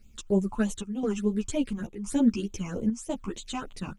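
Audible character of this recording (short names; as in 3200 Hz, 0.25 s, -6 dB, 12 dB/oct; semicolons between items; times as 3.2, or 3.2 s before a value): a quantiser's noise floor 12-bit, dither none; phasing stages 8, 3.3 Hz, lowest notch 510–1700 Hz; chopped level 0.97 Hz, depth 65%, duty 80%; a shimmering, thickened sound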